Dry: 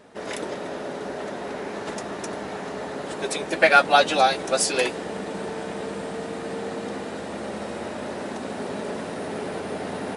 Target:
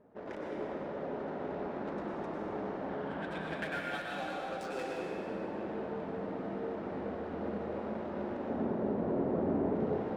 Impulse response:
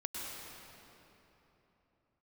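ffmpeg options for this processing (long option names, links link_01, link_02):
-filter_complex "[0:a]adynamicsmooth=sensitivity=1.5:basefreq=890,asettb=1/sr,asplit=3[link_01][link_02][link_03];[link_01]atrim=end=2.894[link_04];[link_02]atrim=start=2.89:end=3.98,asetpts=PTS-STARTPTS,afade=type=in:duration=0.004:curve=qsin,afade=type=out:start_time=1.086:duration=0.004:curve=qsin,equalizer=frequency=160:width_type=o:width=0.33:gain=7,equalizer=frequency=400:width_type=o:width=0.33:gain=-11,equalizer=frequency=1600:width_type=o:width=0.33:gain=8,equalizer=frequency=3150:width_type=o:width=0.33:gain=8,equalizer=frequency=6300:width_type=o:width=0.33:gain=-6[link_05];[link_03]atrim=start=3.976[link_06];[link_04][link_05]acrossfade=duration=0.004:curve1=hsin:curve2=qsin[link_07];[link_07][link_06]acrossfade=duration=0.004:curve1=qsin:curve2=hsin,acompressor=threshold=-30dB:ratio=10,asettb=1/sr,asplit=3[link_08][link_09][link_10];[link_08]atrim=end=8.494[link_11];[link_09]atrim=start=8.49:end=9.75,asetpts=PTS-STARTPTS,afade=type=in:duration=0.004:curve=qsin,afade=type=out:start_time=1.256:duration=0.004:curve=qsin,tiltshelf=frequency=1200:gain=8.5[link_12];[link_10]atrim=start=9.746[link_13];[link_11][link_12]acrossfade=duration=0.004:curve1=hsin:curve2=qsin[link_14];[link_14][link_13]acrossfade=duration=0.004:curve1=qsin:curve2=hsin[link_15];[1:a]atrim=start_sample=2205[link_16];[link_15][link_16]afir=irnorm=-1:irlink=0,volume=-5.5dB"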